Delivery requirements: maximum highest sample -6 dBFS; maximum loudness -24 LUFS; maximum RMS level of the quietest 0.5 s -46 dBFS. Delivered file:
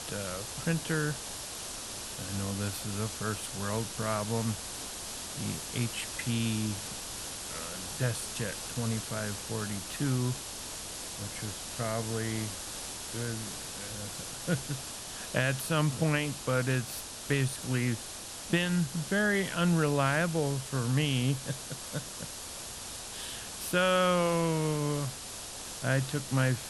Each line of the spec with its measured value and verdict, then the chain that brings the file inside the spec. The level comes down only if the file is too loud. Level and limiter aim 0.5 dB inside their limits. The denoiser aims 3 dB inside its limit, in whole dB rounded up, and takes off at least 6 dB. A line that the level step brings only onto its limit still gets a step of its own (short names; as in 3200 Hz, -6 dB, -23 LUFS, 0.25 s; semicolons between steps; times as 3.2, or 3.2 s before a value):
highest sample -10.5 dBFS: OK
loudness -32.5 LUFS: OK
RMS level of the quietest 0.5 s -42 dBFS: fail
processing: denoiser 7 dB, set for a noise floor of -42 dBFS